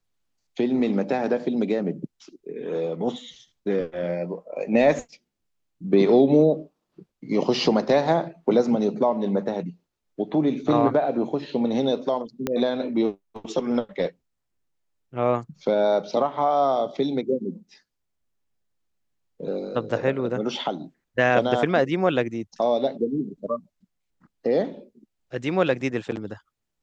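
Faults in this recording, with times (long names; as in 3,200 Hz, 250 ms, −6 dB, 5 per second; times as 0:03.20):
0:12.47: click −11 dBFS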